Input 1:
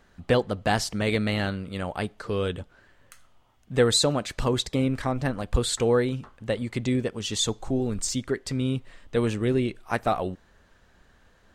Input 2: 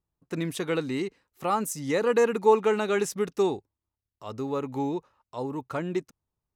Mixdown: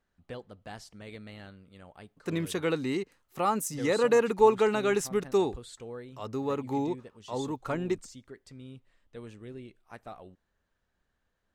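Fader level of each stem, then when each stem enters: −20.0, −1.0 decibels; 0.00, 1.95 seconds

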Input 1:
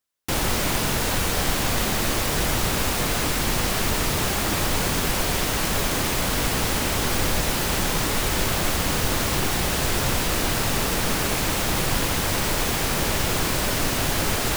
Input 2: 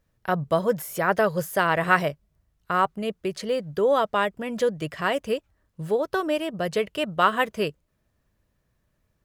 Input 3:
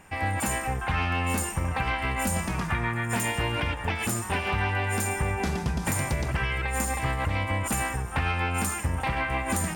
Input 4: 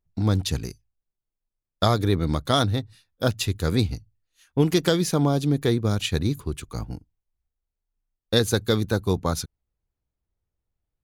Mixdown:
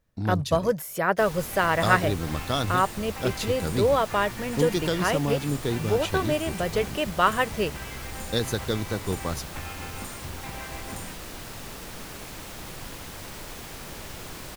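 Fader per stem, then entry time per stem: −16.0, −1.0, −12.0, −6.0 decibels; 0.90, 0.00, 1.40, 0.00 seconds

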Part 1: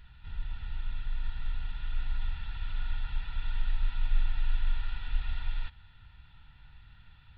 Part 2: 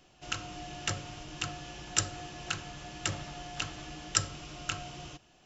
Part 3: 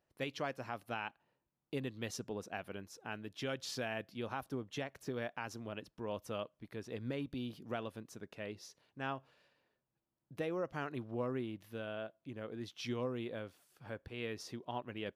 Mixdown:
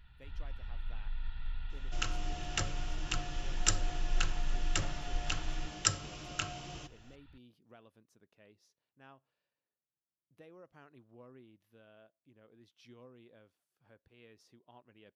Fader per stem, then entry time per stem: −5.5, −1.5, −17.5 decibels; 0.00, 1.70, 0.00 seconds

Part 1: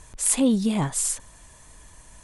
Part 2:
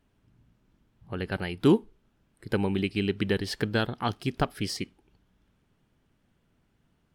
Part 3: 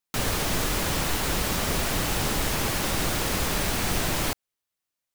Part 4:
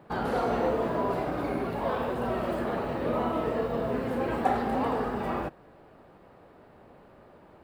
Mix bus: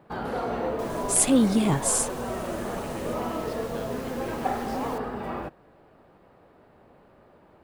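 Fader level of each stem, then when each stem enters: +0.5, −17.0, −19.0, −2.0 decibels; 0.90, 0.00, 0.65, 0.00 seconds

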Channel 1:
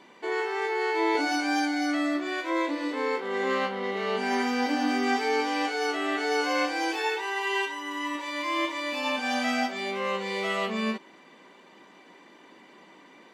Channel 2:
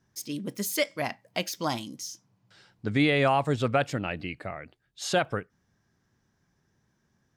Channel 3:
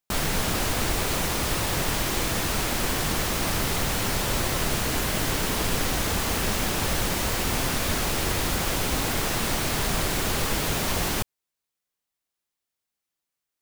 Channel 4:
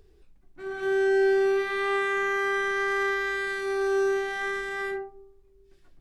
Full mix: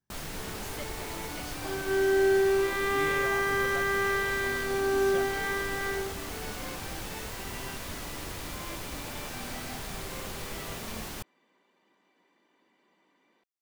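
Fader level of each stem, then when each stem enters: −17.0, −17.0, −13.0, −1.5 decibels; 0.10, 0.00, 0.00, 1.05 seconds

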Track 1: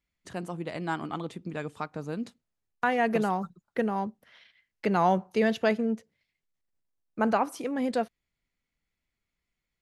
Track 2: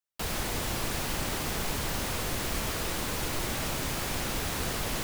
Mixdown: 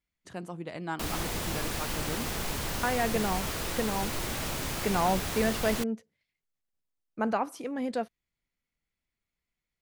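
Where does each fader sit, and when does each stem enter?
−3.5, −1.5 decibels; 0.00, 0.80 seconds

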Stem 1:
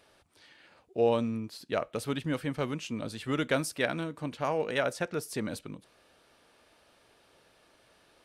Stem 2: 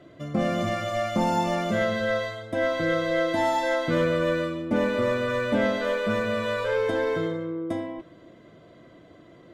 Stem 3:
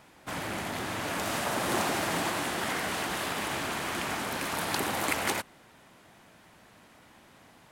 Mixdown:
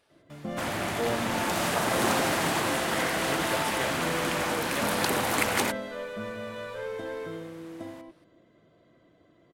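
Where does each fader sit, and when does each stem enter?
−6.0, −10.5, +3.0 decibels; 0.00, 0.10, 0.30 seconds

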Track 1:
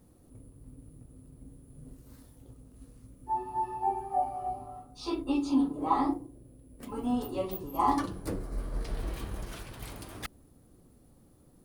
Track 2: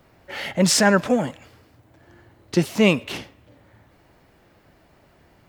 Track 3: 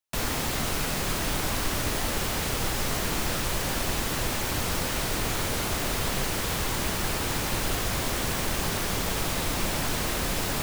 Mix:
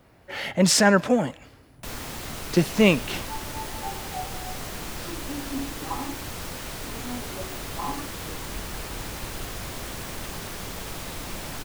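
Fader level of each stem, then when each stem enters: −6.5, −1.0, −7.0 decibels; 0.00, 0.00, 1.70 seconds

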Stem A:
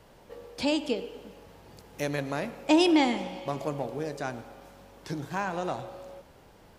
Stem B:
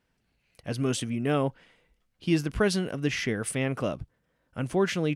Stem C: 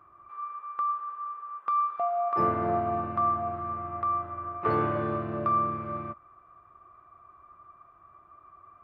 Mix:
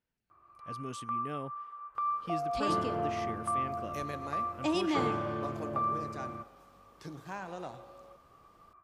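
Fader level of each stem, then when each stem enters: −10.0, −14.5, −6.0 decibels; 1.95, 0.00, 0.30 seconds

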